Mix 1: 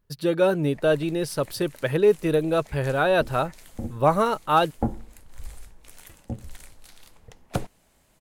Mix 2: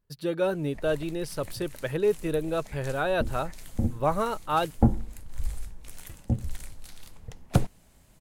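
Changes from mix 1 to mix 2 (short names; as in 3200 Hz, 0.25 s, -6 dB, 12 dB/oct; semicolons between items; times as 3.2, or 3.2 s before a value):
speech -6.0 dB; background: add tone controls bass +8 dB, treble +2 dB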